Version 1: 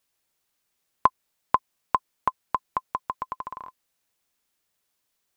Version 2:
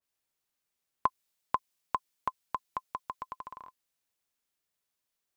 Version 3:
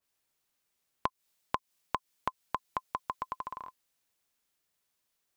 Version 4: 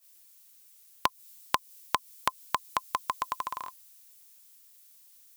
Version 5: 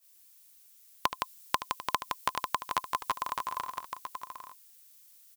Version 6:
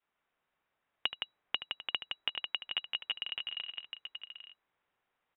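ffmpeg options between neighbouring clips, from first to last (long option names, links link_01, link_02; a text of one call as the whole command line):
ffmpeg -i in.wav -af "adynamicequalizer=threshold=0.0126:dfrequency=2300:dqfactor=0.7:tfrequency=2300:tqfactor=0.7:attack=5:release=100:ratio=0.375:range=3:mode=boostabove:tftype=highshelf,volume=-8.5dB" out.wav
ffmpeg -i in.wav -af "acompressor=threshold=-33dB:ratio=6,volume=4.5dB" out.wav
ffmpeg -i in.wav -af "crystalizer=i=9.5:c=0" out.wav
ffmpeg -i in.wav -af "aecho=1:1:75|166|746|832:0.237|0.562|0.158|0.473,volume=-2.5dB" out.wav
ffmpeg -i in.wav -af "lowpass=frequency=3300:width_type=q:width=0.5098,lowpass=frequency=3300:width_type=q:width=0.6013,lowpass=frequency=3300:width_type=q:width=0.9,lowpass=frequency=3300:width_type=q:width=2.563,afreqshift=-3900,volume=-4.5dB" out.wav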